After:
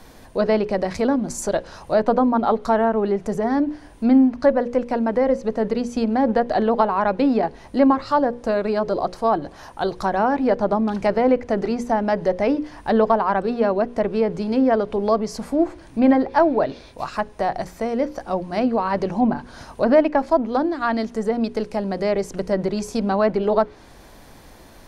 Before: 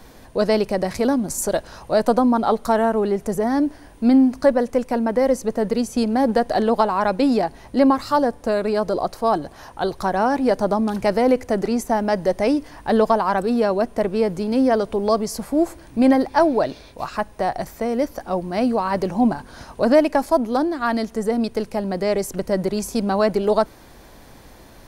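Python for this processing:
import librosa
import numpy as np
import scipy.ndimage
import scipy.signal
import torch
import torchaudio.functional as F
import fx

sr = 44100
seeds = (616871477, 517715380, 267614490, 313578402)

y = fx.env_lowpass_down(x, sr, base_hz=2800.0, full_db=-15.0)
y = fx.hum_notches(y, sr, base_hz=60, count=9)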